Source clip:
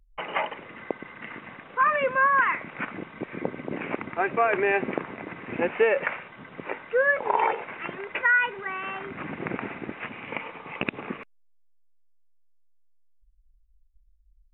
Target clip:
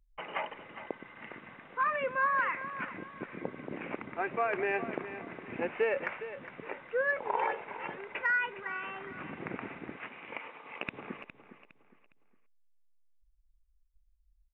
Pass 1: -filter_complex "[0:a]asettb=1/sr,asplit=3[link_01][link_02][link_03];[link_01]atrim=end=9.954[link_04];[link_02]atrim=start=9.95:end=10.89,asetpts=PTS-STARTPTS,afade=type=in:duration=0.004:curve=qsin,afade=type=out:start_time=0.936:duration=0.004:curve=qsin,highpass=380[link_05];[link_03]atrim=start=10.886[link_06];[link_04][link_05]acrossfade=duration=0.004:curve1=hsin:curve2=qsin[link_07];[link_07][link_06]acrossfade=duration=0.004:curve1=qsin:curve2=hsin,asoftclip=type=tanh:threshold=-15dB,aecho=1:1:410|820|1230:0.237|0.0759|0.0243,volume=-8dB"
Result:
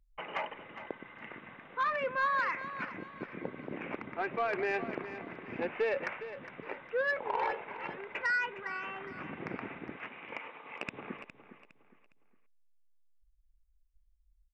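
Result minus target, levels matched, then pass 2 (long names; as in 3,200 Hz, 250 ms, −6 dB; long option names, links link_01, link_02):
soft clipping: distortion +20 dB
-filter_complex "[0:a]asettb=1/sr,asplit=3[link_01][link_02][link_03];[link_01]atrim=end=9.954[link_04];[link_02]atrim=start=9.95:end=10.89,asetpts=PTS-STARTPTS,afade=type=in:duration=0.004:curve=qsin,afade=type=out:start_time=0.936:duration=0.004:curve=qsin,highpass=380[link_05];[link_03]atrim=start=10.886[link_06];[link_04][link_05]acrossfade=duration=0.004:curve1=hsin:curve2=qsin[link_07];[link_07][link_06]acrossfade=duration=0.004:curve1=qsin:curve2=hsin,asoftclip=type=tanh:threshold=-3.5dB,aecho=1:1:410|820|1230:0.237|0.0759|0.0243,volume=-8dB"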